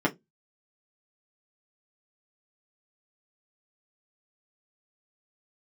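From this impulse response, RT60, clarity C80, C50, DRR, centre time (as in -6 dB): 0.15 s, 33.5 dB, 22.5 dB, -3.5 dB, 9 ms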